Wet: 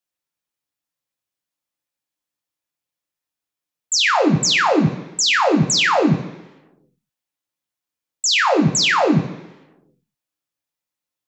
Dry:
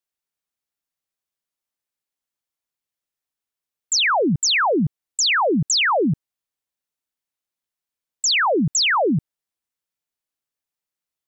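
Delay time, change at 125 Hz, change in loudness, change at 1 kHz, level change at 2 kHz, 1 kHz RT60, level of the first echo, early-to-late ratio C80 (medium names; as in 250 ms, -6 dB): no echo, +4.5 dB, +2.0 dB, +2.5 dB, +2.0 dB, 1.0 s, no echo, 12.5 dB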